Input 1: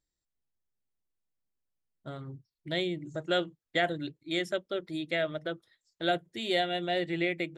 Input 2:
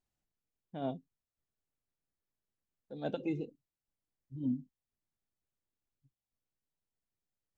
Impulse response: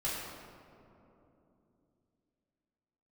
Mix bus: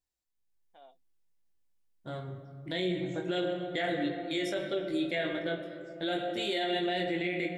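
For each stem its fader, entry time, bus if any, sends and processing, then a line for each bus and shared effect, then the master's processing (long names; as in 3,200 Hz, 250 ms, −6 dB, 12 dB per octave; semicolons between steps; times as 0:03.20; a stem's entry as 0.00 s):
−6.0 dB, 0.00 s, send −9 dB, notch filter 1,300 Hz, Q 8.1; automatic gain control gain up to 10 dB; chorus effect 0.46 Hz, delay 20 ms, depth 2.6 ms
−11.5 dB, 0.00 s, no send, high-shelf EQ 2,000 Hz +10.5 dB; downward compressor 6 to 1, threshold −41 dBFS, peak gain reduction 11.5 dB; high-pass with resonance 690 Hz, resonance Q 1.7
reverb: on, RT60 3.1 s, pre-delay 3 ms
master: notch filter 620 Hz, Q 12; brickwall limiter −22.5 dBFS, peak gain reduction 9.5 dB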